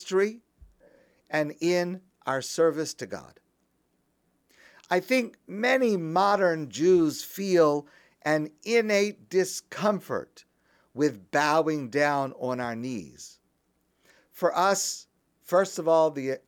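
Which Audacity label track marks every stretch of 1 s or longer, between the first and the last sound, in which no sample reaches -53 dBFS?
3.380000	4.500000	silence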